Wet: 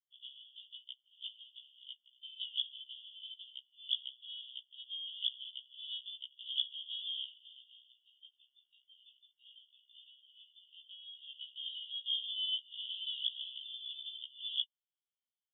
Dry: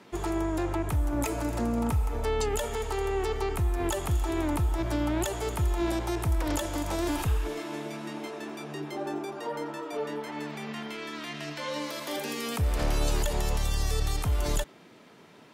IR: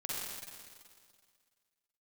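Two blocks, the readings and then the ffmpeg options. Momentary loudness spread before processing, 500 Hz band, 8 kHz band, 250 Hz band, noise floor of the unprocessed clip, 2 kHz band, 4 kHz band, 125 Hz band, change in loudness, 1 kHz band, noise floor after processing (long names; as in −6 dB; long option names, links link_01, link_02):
8 LU, below −40 dB, below −40 dB, below −40 dB, −53 dBFS, −26.0 dB, +4.0 dB, below −40 dB, −9.0 dB, below −40 dB, below −85 dBFS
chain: -af "anlmdn=6.31,asuperpass=centerf=3200:order=12:qfactor=4.9,afftfilt=real='re*1.73*eq(mod(b,3),0)':imag='im*1.73*eq(mod(b,3),0)':win_size=2048:overlap=0.75,volume=12.5dB"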